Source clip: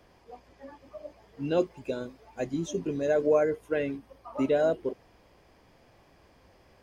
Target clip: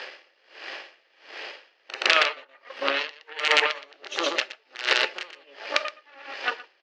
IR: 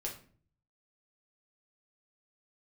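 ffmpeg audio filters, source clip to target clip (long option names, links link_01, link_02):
-filter_complex "[0:a]areverse,acompressor=threshold=-39dB:ratio=12,aeval=exprs='0.0237*(cos(1*acos(clip(val(0)/0.0237,-1,1)))-cos(1*PI/2))+0.0119*(cos(3*acos(clip(val(0)/0.0237,-1,1)))-cos(3*PI/2))+0.00422*(cos(4*acos(clip(val(0)/0.0237,-1,1)))-cos(4*PI/2))+0.00473*(cos(5*acos(clip(val(0)/0.0237,-1,1)))-cos(5*PI/2))+0.000668*(cos(8*acos(clip(val(0)/0.0237,-1,1)))-cos(8*PI/2))':channel_layout=same,aeval=exprs='(mod(33.5*val(0)+1,2)-1)/33.5':channel_layout=same,highpass=frequency=480:width=0.5412,highpass=frequency=480:width=1.3066,equalizer=frequency=490:width_type=q:width=4:gain=-5,equalizer=frequency=700:width_type=q:width=4:gain=-8,equalizer=frequency=1000:width_type=q:width=4:gain=-9,equalizer=frequency=1800:width_type=q:width=4:gain=5,equalizer=frequency=2800:width_type=q:width=4:gain=8,equalizer=frequency=4200:width_type=q:width=4:gain=4,lowpass=frequency=5200:width=0.5412,lowpass=frequency=5200:width=1.3066,aecho=1:1:119:0.531,asplit=2[link_01][link_02];[1:a]atrim=start_sample=2205[link_03];[link_02][link_03]afir=irnorm=-1:irlink=0,volume=-10.5dB[link_04];[link_01][link_04]amix=inputs=2:normalize=0,alimiter=level_in=30.5dB:limit=-1dB:release=50:level=0:latency=1,aeval=exprs='val(0)*pow(10,-29*(0.5-0.5*cos(2*PI*1.4*n/s))/20)':channel_layout=same"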